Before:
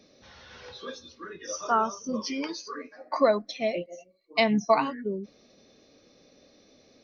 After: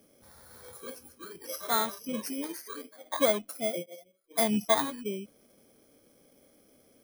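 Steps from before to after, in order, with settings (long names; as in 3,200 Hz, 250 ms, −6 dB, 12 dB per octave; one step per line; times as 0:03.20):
samples in bit-reversed order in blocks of 16 samples
level −3.5 dB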